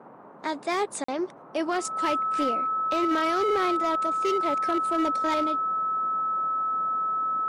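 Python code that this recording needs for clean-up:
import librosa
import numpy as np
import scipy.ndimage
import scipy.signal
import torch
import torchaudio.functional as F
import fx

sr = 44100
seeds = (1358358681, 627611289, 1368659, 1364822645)

y = fx.fix_declip(x, sr, threshold_db=-19.5)
y = fx.notch(y, sr, hz=1300.0, q=30.0)
y = fx.fix_interpolate(y, sr, at_s=(1.04,), length_ms=44.0)
y = fx.noise_reduce(y, sr, print_start_s=0.0, print_end_s=0.5, reduce_db=27.0)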